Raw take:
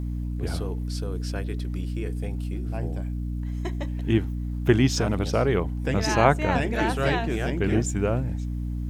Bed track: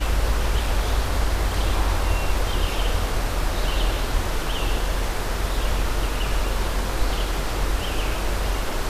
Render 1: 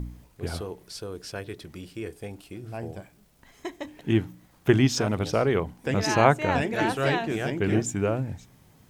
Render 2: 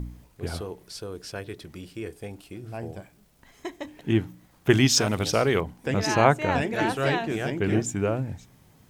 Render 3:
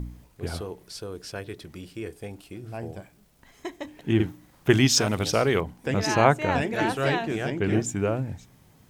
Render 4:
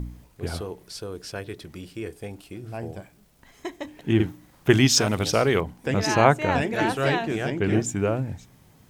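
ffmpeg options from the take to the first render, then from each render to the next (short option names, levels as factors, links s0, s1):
-af "bandreject=f=60:t=h:w=4,bandreject=f=120:t=h:w=4,bandreject=f=180:t=h:w=4,bandreject=f=240:t=h:w=4,bandreject=f=300:t=h:w=4"
-filter_complex "[0:a]asettb=1/sr,asplit=3[s0][s1][s2];[s0]atrim=end=4.704[s3];[s1]atrim=start=4.7:end=5.61,asetpts=PTS-STARTPTS,afade=t=in:d=0.004:c=qsin,afade=t=out:st=0.906:d=0.004:c=qsin,highshelf=f=2300:g=10[s4];[s2]atrim=start=5.606[s5];[s3][s4]acrossfade=d=0.004:c1=hsin:c2=qsin[s6];[s6][s5]acrossfade=d=0.004:c1=qsin:c2=hsin"
-filter_complex "[0:a]asettb=1/sr,asplit=3[s0][s1][s2];[s0]atrim=end=4.154[s3];[s1]atrim=start=4.15:end=4.71,asetpts=PTS-STARTPTS,afade=t=in:d=0.004:c=qsin,afade=t=out:st=0.556:d=0.004:c=qsin,asplit=2[s4][s5];[s5]adelay=47,volume=0.794[s6];[s4][s6]amix=inputs=2:normalize=0,atrim=end_sample=24696[s7];[s2]atrim=start=4.706[s8];[s3][s7]acrossfade=d=0.004:c1=hsin:c2=qsin[s9];[s9][s8]acrossfade=d=0.004:c1=qsin:c2=hsin,asettb=1/sr,asplit=3[s10][s11][s12];[s10]atrim=end=7.314[s13];[s11]atrim=start=7.31:end=7.74,asetpts=PTS-STARTPTS,afade=t=in:d=0.004:c=qsin,afade=t=out:st=0.426:d=0.004:c=qsin,highshelf=f=12000:g=-8.5[s14];[s12]atrim=start=7.736[s15];[s13][s14]acrossfade=d=0.004:c1=hsin:c2=qsin[s16];[s16][s15]acrossfade=d=0.004:c1=qsin:c2=hsin"
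-af "volume=1.19"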